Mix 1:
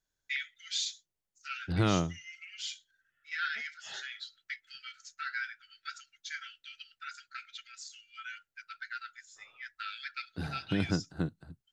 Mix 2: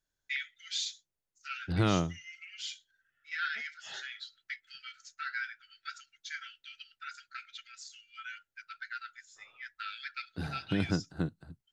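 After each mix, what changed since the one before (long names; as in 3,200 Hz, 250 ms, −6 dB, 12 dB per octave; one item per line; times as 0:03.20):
first voice: add high-shelf EQ 6,800 Hz −4.5 dB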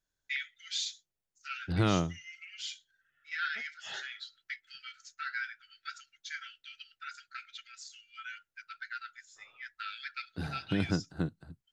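background +3.5 dB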